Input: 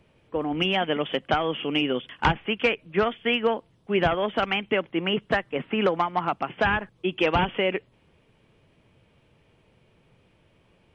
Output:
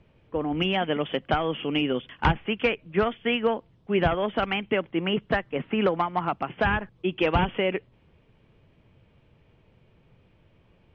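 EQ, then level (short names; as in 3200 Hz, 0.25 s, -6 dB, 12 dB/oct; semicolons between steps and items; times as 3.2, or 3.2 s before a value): air absorption 110 m; low shelf 140 Hz +7 dB; -1.0 dB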